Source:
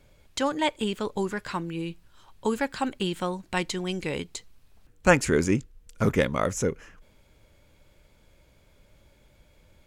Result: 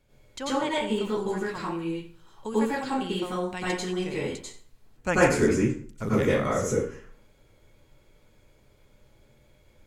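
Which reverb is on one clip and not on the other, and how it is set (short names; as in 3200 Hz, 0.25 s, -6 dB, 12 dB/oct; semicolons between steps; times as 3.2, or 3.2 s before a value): plate-style reverb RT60 0.51 s, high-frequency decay 0.7×, pre-delay 80 ms, DRR -8 dB; gain -9 dB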